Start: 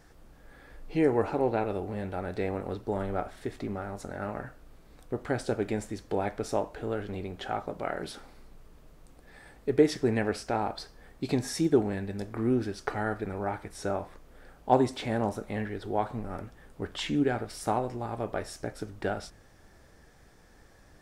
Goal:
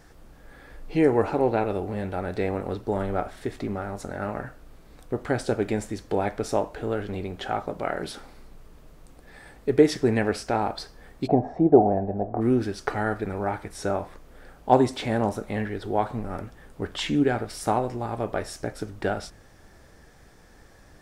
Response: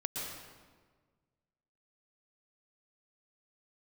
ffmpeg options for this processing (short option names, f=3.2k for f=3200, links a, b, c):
-filter_complex "[0:a]asplit=3[a][b][c];[a]afade=t=out:st=11.26:d=0.02[d];[b]lowpass=f=710:t=q:w=7.4,afade=t=in:st=11.26:d=0.02,afade=t=out:st=12.4:d=0.02[e];[c]afade=t=in:st=12.4:d=0.02[f];[d][e][f]amix=inputs=3:normalize=0,volume=4.5dB"